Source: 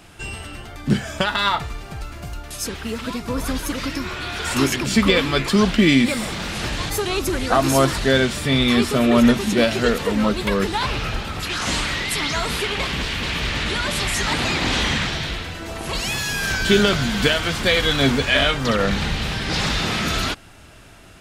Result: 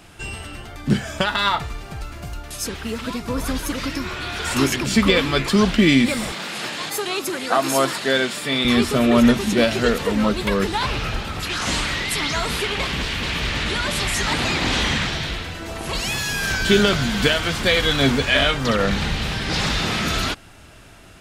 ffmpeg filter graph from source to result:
ffmpeg -i in.wav -filter_complex "[0:a]asettb=1/sr,asplit=3[link_01][link_02][link_03];[link_01]atrim=end=6.324[link_04];[link_02]atrim=start=6.32:end=8.65,asetpts=PTS-STARTPTS,afade=type=in:duration=0.004:curve=qsin,afade=type=out:start_time=2.326:duration=0.004:curve=qsin,highpass=frequency=140:width=0.5412,highpass=frequency=140:width=1.3066,lowshelf=frequency=280:gain=-9.5,bandreject=frequency=5900:width=14[link_05];[link_03]atrim=start=8.646[link_06];[link_04][link_05]acrossfade=duration=0.004:curve1=hsin:curve2=qsin[link_07];[link_07][link_06]acrossfade=duration=0.004:curve1=qsin:curve2=hsin" out.wav

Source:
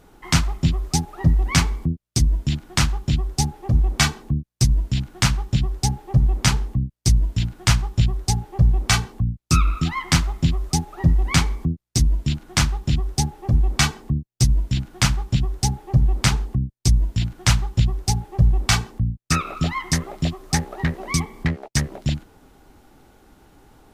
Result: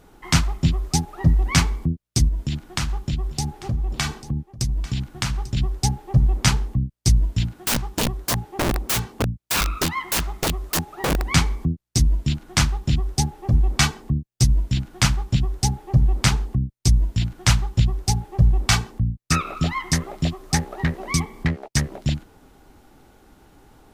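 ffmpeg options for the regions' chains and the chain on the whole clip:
ffmpeg -i in.wav -filter_complex "[0:a]asettb=1/sr,asplit=3[link_01][link_02][link_03];[link_01]atrim=end=2.284[link_04];[link_02]atrim=start=2.28:end=5.57,asetpts=PTS-STARTPTS,afade=type=in:duration=0.004:curve=qsin,afade=type=out:start_time=3.286:duration=0.004:curve=qsin,acompressor=threshold=-20dB:ratio=4:attack=3.2:release=140:knee=1:detection=peak,aecho=1:1:844:0.15,atrim=end_sample=145089[link_05];[link_03]atrim=start=5.566[link_06];[link_04][link_05]acrossfade=duration=0.004:curve1=hsin:curve2=qsin[link_07];[link_07][link_06]acrossfade=duration=0.004:curve1=qsin:curve2=hsin,asettb=1/sr,asplit=3[link_08][link_09][link_10];[link_08]atrim=end=7.454[link_11];[link_09]atrim=start=7.45:end=11.33,asetpts=PTS-STARTPTS,afade=type=in:duration=0.004:curve=qsin,afade=type=out:start_time=3.876:duration=0.004:curve=qsin,highpass=59,aeval=exprs='(mod(6.31*val(0)+1,2)-1)/6.31':channel_layout=same[link_12];[link_10]atrim=start=11.326[link_13];[link_11][link_12]acrossfade=duration=0.004:curve1=hsin:curve2=qsin[link_14];[link_14][link_13]acrossfade=duration=0.004:curve1=qsin:curve2=hsin" out.wav

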